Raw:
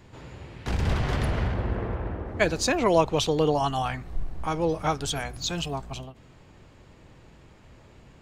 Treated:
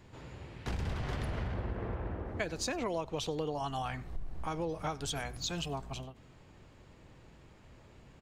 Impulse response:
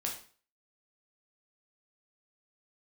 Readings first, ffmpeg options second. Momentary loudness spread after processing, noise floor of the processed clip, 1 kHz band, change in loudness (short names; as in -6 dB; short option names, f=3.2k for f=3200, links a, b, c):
9 LU, -58 dBFS, -11.0 dB, -11.0 dB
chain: -filter_complex "[0:a]acompressor=threshold=-27dB:ratio=6,asplit=2[a][b];[b]aecho=0:1:95:0.0631[c];[a][c]amix=inputs=2:normalize=0,volume=-5dB"